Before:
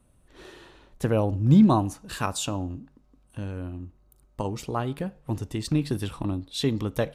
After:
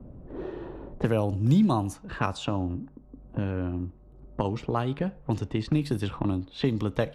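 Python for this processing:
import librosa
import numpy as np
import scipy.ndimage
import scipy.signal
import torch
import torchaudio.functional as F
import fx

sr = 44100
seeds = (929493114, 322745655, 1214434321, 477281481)

y = fx.env_lowpass(x, sr, base_hz=490.0, full_db=-21.5)
y = fx.band_squash(y, sr, depth_pct=70)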